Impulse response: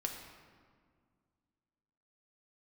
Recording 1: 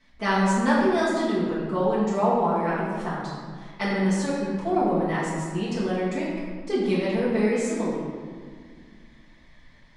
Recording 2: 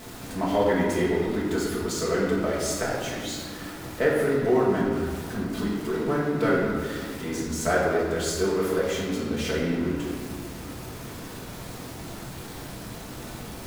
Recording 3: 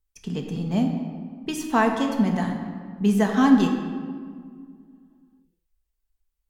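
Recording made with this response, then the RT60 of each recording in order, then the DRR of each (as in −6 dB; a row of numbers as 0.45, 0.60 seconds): 3; 1.9, 1.9, 1.9 seconds; −11.0, −7.0, 1.5 decibels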